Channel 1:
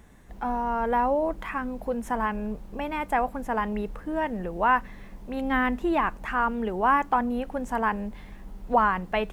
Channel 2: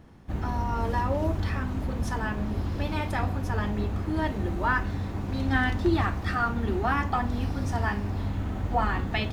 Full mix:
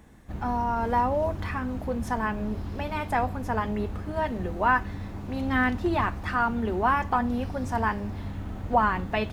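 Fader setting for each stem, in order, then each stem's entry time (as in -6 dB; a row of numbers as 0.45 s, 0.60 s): -2.0 dB, -5.0 dB; 0.00 s, 0.00 s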